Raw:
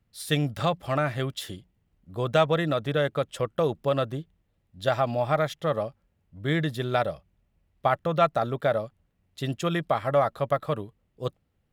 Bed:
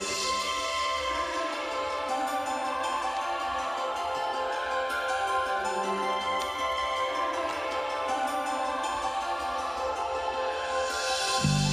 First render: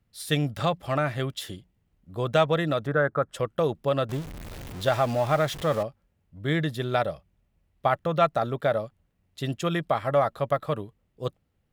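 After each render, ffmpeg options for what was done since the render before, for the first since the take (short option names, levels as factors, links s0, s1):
-filter_complex "[0:a]asplit=3[s0][s1][s2];[s0]afade=t=out:st=2.86:d=0.02[s3];[s1]highshelf=f=2100:t=q:w=3:g=-11.5,afade=t=in:st=2.86:d=0.02,afade=t=out:st=3.33:d=0.02[s4];[s2]afade=t=in:st=3.33:d=0.02[s5];[s3][s4][s5]amix=inputs=3:normalize=0,asettb=1/sr,asplit=3[s6][s7][s8];[s6]atrim=end=4.094[s9];[s7]atrim=start=4.09:end=5.83,asetpts=PTS-STARTPTS,afade=t=in:d=0.004:c=qsin,afade=t=out:st=1.736:d=0.004:c=qsin,aeval=exprs='val(0)+0.5*0.0224*sgn(val(0))':c=same[s10];[s8]atrim=start=5.826[s11];[s9][s10]acrossfade=d=0.004:c1=hsin:c2=qsin[s12];[s12][s11]acrossfade=d=0.004:c1=qsin:c2=hsin"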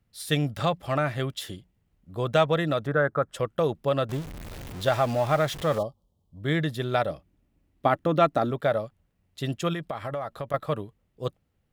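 -filter_complex "[0:a]asettb=1/sr,asplit=3[s0][s1][s2];[s0]atrim=end=5.784[s3];[s1]atrim=start=5.78:end=6.43,asetpts=PTS-STARTPTS,afade=t=in:d=0.004:c=qsin,afade=t=out:st=0.646:d=0.004:c=qsin,asuperstop=centerf=1900:order=12:qfactor=1[s4];[s2]atrim=start=6.426[s5];[s3][s4]acrossfade=d=0.004:c1=hsin:c2=qsin[s6];[s6][s5]acrossfade=d=0.004:c1=qsin:c2=hsin,asettb=1/sr,asplit=3[s7][s8][s9];[s7]atrim=end=7.104[s10];[s8]atrim=start=7.1:end=8.51,asetpts=PTS-STARTPTS,afade=t=in:d=0.004:c=qsin,afade=t=out:st=1.406:d=0.004:c=qsin,equalizer=f=290:t=o:w=0.54:g=14[s11];[s9]atrim=start=8.506[s12];[s10][s11]acrossfade=d=0.004:c1=hsin:c2=qsin[s13];[s13][s12]acrossfade=d=0.004:c1=qsin:c2=hsin,asettb=1/sr,asplit=3[s14][s15][s16];[s14]atrim=end=9.734[s17];[s15]atrim=start=9.73:end=10.54,asetpts=PTS-STARTPTS,afade=t=in:d=0.004:c=qsin,afade=t=out:st=0.806:d=0.004:c=qsin,acompressor=threshold=0.0398:ratio=6:attack=3.2:release=140:knee=1:detection=peak[s18];[s16]atrim=start=10.536[s19];[s17][s18]acrossfade=d=0.004:c1=hsin:c2=qsin[s20];[s20][s19]acrossfade=d=0.004:c1=qsin:c2=hsin"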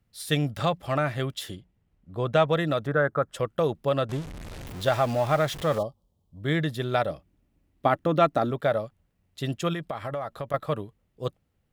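-filter_complex "[0:a]asettb=1/sr,asplit=3[s0][s1][s2];[s0]atrim=end=1.554[s3];[s1]atrim=start=1.55:end=2.48,asetpts=PTS-STARTPTS,afade=t=in:d=0.004:c=qsin,afade=t=out:st=0.926:d=0.004:c=qsin,aemphasis=mode=reproduction:type=cd[s4];[s2]atrim=start=2.476[s5];[s3][s4]acrossfade=d=0.004:c1=hsin:c2=qsin[s6];[s6][s5]acrossfade=d=0.004:c1=qsin:c2=hsin,asettb=1/sr,asplit=3[s7][s8][s9];[s7]atrim=end=4.014[s10];[s8]atrim=start=4.01:end=4.66,asetpts=PTS-STARTPTS,afade=t=in:d=0.004:c=qsin,afade=t=out:st=0.646:d=0.004:c=qsin,lowpass=11000[s11];[s9]atrim=start=4.656[s12];[s10][s11]acrossfade=d=0.004:c1=hsin:c2=qsin[s13];[s13][s12]acrossfade=d=0.004:c1=qsin:c2=hsin"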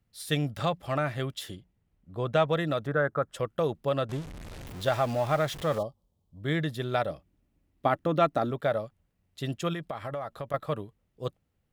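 -af "volume=0.708"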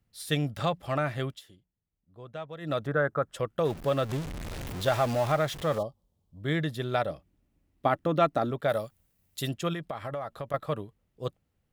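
-filter_complex "[0:a]asettb=1/sr,asplit=3[s0][s1][s2];[s0]atrim=end=3.654[s3];[s1]atrim=start=3.65:end=5.32,asetpts=PTS-STARTPTS,afade=t=in:d=0.004:c=qsin,afade=t=out:st=1.666:d=0.004:c=qsin,aeval=exprs='val(0)+0.5*0.0133*sgn(val(0))':c=same[s4];[s2]atrim=start=5.316[s5];[s3][s4]acrossfade=d=0.004:c1=hsin:c2=qsin[s6];[s6][s5]acrossfade=d=0.004:c1=qsin:c2=hsin,asplit=3[s7][s8][s9];[s7]afade=t=out:st=8.68:d=0.02[s10];[s8]aemphasis=mode=production:type=75kf,afade=t=in:st=8.68:d=0.02,afade=t=out:st=9.48:d=0.02[s11];[s9]afade=t=in:st=9.48:d=0.02[s12];[s10][s11][s12]amix=inputs=3:normalize=0,asplit=3[s13][s14][s15];[s13]atrim=end=1.42,asetpts=PTS-STARTPTS,afade=t=out:st=1.28:d=0.14:silence=0.177828[s16];[s14]atrim=start=1.42:end=2.6,asetpts=PTS-STARTPTS,volume=0.178[s17];[s15]atrim=start=2.6,asetpts=PTS-STARTPTS,afade=t=in:d=0.14:silence=0.177828[s18];[s16][s17][s18]concat=n=3:v=0:a=1"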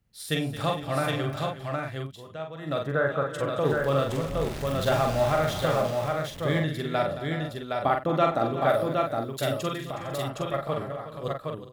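-filter_complex "[0:a]asplit=2[s0][s1];[s1]adelay=44,volume=0.631[s2];[s0][s2]amix=inputs=2:normalize=0,aecho=1:1:49|221|366|455|765:0.224|0.211|0.211|0.15|0.668"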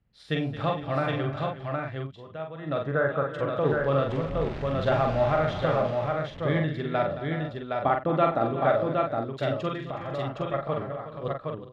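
-af "lowpass=3600,aemphasis=mode=reproduction:type=cd"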